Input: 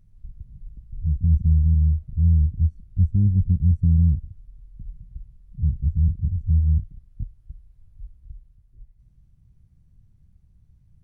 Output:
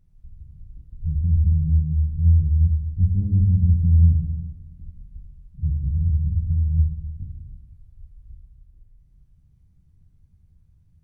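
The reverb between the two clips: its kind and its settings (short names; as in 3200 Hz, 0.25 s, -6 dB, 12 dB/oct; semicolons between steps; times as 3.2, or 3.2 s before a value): plate-style reverb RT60 1.5 s, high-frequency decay 0.95×, DRR -2.5 dB; gain -5 dB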